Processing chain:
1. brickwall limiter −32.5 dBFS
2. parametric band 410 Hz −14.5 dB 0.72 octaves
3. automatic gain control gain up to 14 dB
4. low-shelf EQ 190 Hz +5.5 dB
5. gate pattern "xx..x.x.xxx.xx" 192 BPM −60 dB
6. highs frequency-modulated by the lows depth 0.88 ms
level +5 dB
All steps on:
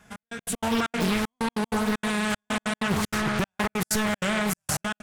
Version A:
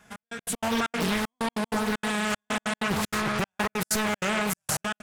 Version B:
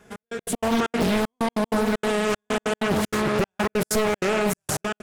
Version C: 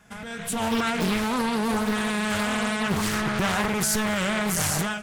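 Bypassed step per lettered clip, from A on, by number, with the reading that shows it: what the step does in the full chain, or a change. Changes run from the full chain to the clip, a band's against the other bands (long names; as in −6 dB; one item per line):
4, 125 Hz band −3.0 dB
2, 500 Hz band +7.0 dB
5, 8 kHz band +2.0 dB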